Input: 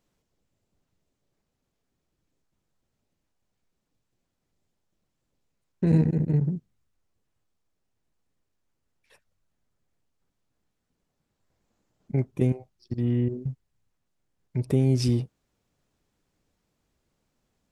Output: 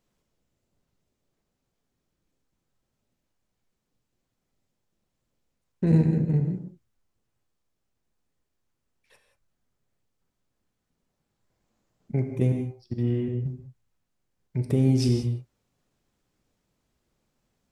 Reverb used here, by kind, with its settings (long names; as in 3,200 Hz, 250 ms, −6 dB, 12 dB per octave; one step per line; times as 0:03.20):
reverb whose tail is shaped and stops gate 210 ms flat, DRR 5 dB
level −1 dB